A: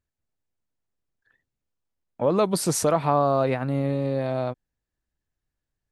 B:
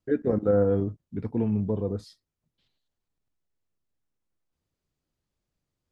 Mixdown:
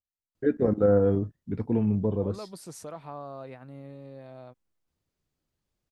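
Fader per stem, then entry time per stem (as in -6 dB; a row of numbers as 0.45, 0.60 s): -19.0, +1.0 dB; 0.00, 0.35 s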